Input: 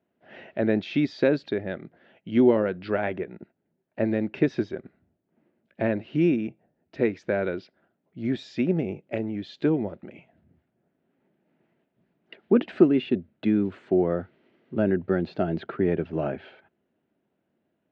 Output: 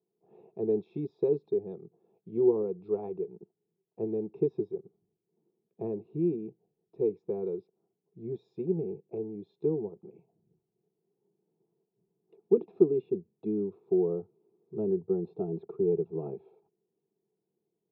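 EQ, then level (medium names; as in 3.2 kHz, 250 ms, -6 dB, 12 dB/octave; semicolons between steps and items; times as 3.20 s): boxcar filter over 29 samples; peaking EQ 430 Hz +10.5 dB 0.39 oct; static phaser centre 390 Hz, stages 8; -7.0 dB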